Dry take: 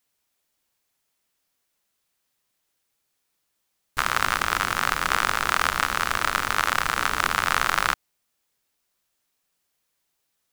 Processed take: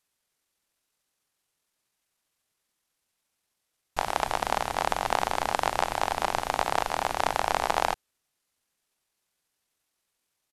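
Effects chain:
pitch shifter −8.5 semitones
level −3.5 dB

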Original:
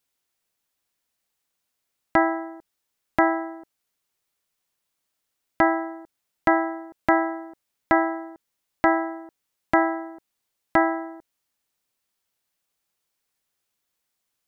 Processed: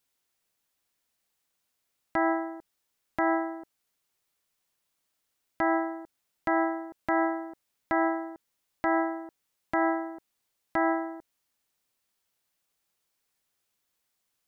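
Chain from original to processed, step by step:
brickwall limiter −16 dBFS, peak gain reduction 10.5 dB

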